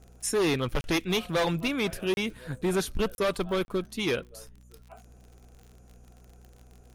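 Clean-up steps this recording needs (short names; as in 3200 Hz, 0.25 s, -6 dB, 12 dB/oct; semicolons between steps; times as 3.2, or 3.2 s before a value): de-click; de-hum 61.1 Hz, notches 4; interpolate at 0.81/2.14/3.15/3.65, 31 ms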